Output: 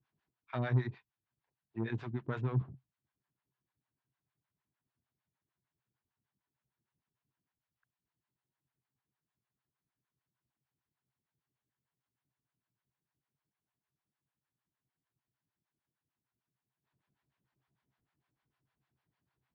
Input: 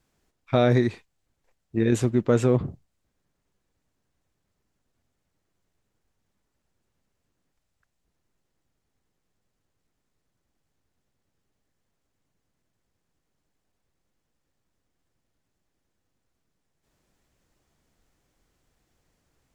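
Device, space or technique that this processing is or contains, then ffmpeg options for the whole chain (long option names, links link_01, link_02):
guitar amplifier with harmonic tremolo: -filter_complex "[0:a]acrossover=split=550[link_01][link_02];[link_01]aeval=exprs='val(0)*(1-1/2+1/2*cos(2*PI*6.6*n/s))':channel_layout=same[link_03];[link_02]aeval=exprs='val(0)*(1-1/2-1/2*cos(2*PI*6.6*n/s))':channel_layout=same[link_04];[link_03][link_04]amix=inputs=2:normalize=0,asoftclip=type=tanh:threshold=-19dB,highpass=93,equalizer=frequency=130:width_type=q:width=4:gain=10,equalizer=frequency=520:width_type=q:width=4:gain=-9,equalizer=frequency=990:width_type=q:width=4:gain=6,equalizer=frequency=1600:width_type=q:width=4:gain=4,lowpass=frequency=4000:width=0.5412,lowpass=frequency=4000:width=1.3066,volume=-8.5dB"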